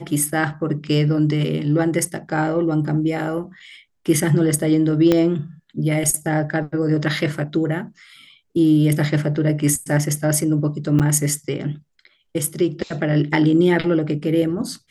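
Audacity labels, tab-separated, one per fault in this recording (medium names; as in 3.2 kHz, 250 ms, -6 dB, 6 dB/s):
5.120000	5.120000	pop -5 dBFS
10.990000	11.000000	dropout 7.5 ms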